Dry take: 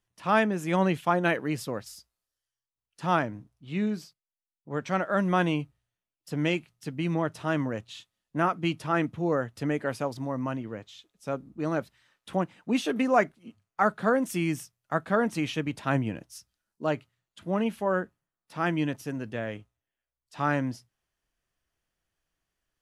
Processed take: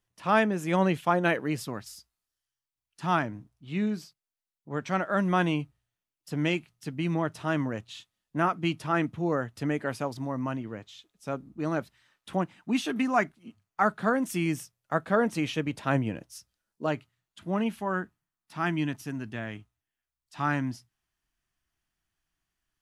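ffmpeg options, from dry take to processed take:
-af "asetnsamples=n=441:p=0,asendcmd='1.61 equalizer g -10;3.25 equalizer g -3.5;12.55 equalizer g -13;13.37 equalizer g -5;14.46 equalizer g 2;16.86 equalizer g -6;17.79 equalizer g -14',equalizer=f=510:t=o:w=0.43:g=0.5"

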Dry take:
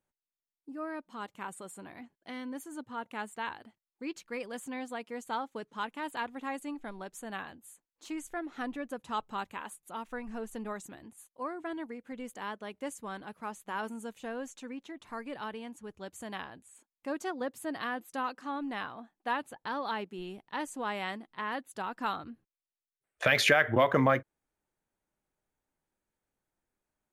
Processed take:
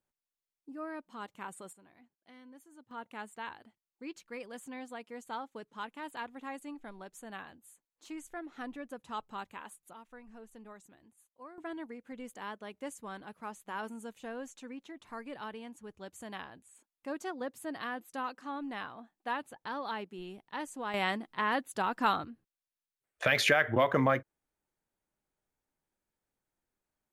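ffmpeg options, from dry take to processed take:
-af "asetnsamples=n=441:p=0,asendcmd='1.73 volume volume -14.5dB;2.91 volume volume -5dB;9.93 volume volume -12.5dB;11.58 volume volume -3dB;20.94 volume volume 5dB;22.25 volume volume -2dB',volume=-2.5dB"

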